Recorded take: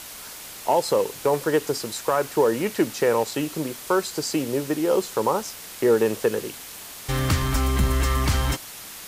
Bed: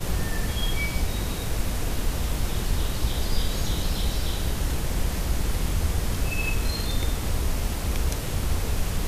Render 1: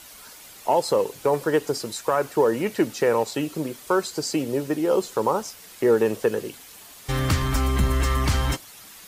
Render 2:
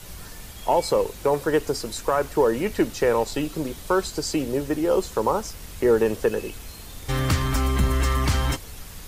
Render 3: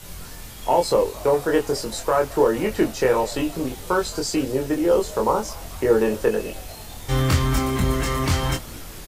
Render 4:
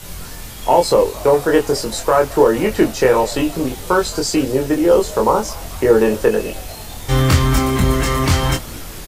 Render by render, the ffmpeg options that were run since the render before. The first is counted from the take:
-af "afftdn=nr=8:nf=-40"
-filter_complex "[1:a]volume=-15dB[a];[0:a][a]amix=inputs=2:normalize=0"
-filter_complex "[0:a]asplit=2[a][b];[b]adelay=23,volume=-3dB[c];[a][c]amix=inputs=2:normalize=0,asplit=6[d][e][f][g][h][i];[e]adelay=221,afreqshift=100,volume=-22.5dB[j];[f]adelay=442,afreqshift=200,volume=-26.5dB[k];[g]adelay=663,afreqshift=300,volume=-30.5dB[l];[h]adelay=884,afreqshift=400,volume=-34.5dB[m];[i]adelay=1105,afreqshift=500,volume=-38.6dB[n];[d][j][k][l][m][n]amix=inputs=6:normalize=0"
-af "volume=6dB,alimiter=limit=-1dB:level=0:latency=1"

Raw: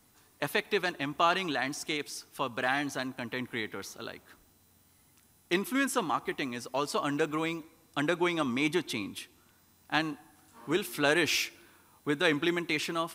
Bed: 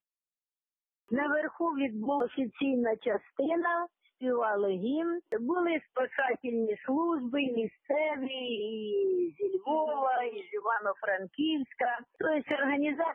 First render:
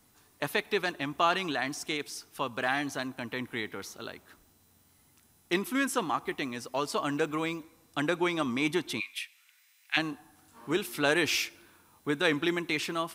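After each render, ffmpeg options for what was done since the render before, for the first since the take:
-filter_complex "[0:a]asplit=3[a][b][c];[a]afade=t=out:st=8.99:d=0.02[d];[b]highpass=f=2.2k:t=q:w=3.7,afade=t=in:st=8.99:d=0.02,afade=t=out:st=9.96:d=0.02[e];[c]afade=t=in:st=9.96:d=0.02[f];[d][e][f]amix=inputs=3:normalize=0"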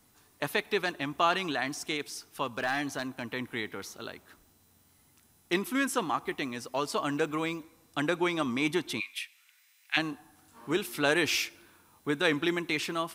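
-filter_complex "[0:a]asettb=1/sr,asplit=3[a][b][c];[a]atrim=end=2.444[d];[b]atrim=start=2.44:end=3.27,asetpts=PTS-STARTPTS,afade=t=in:d=0.004:c=qsin,afade=t=out:st=0.826:d=0.004:c=qsin,volume=22.5dB,asoftclip=hard,volume=-22.5dB[e];[c]atrim=start=3.266[f];[d][e]acrossfade=d=0.004:c1=hsin:c2=qsin[g];[g][f]acrossfade=d=0.004:c1=qsin:c2=hsin"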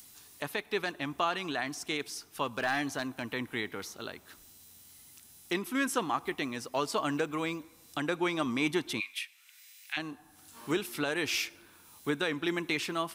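-filter_complex "[0:a]acrossover=split=2500[a][b];[b]acompressor=mode=upward:threshold=-43dB:ratio=2.5[c];[a][c]amix=inputs=2:normalize=0,alimiter=limit=-18dB:level=0:latency=1:release=444"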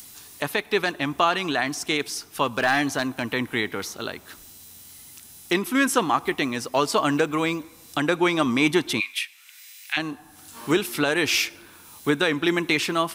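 -af "volume=9.5dB"

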